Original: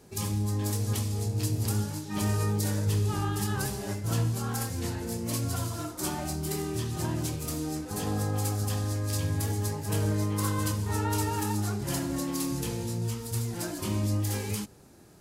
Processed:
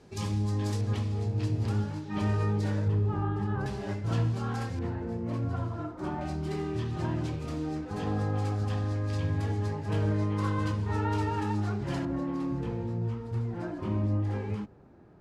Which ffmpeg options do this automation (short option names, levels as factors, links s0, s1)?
-af "asetnsamples=n=441:p=0,asendcmd='0.81 lowpass f 2800;2.88 lowpass f 1300;3.66 lowpass f 3200;4.79 lowpass f 1500;6.21 lowpass f 2800;12.05 lowpass f 1500',lowpass=4700"